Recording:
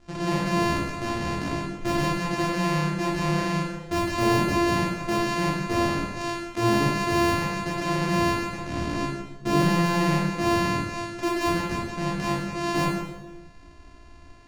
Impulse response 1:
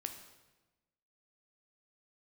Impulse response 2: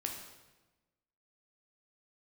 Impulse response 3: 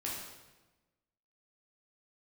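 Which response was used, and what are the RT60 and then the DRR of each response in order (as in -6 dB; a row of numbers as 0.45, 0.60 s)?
3; 1.1, 1.1, 1.1 s; 5.5, 1.0, -5.5 dB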